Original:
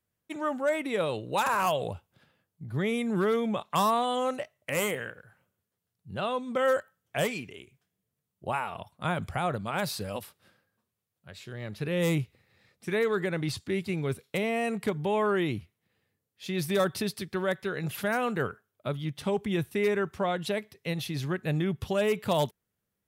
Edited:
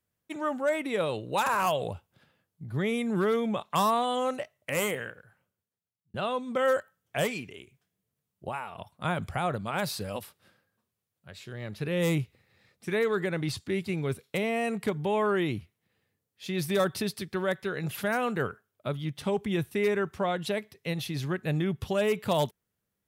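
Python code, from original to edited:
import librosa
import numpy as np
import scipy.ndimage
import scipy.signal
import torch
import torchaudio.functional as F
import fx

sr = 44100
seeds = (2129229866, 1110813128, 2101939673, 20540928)

y = fx.edit(x, sr, fx.fade_out_span(start_s=5.0, length_s=1.14),
    fx.clip_gain(start_s=8.49, length_s=0.29, db=-5.0), tone=tone)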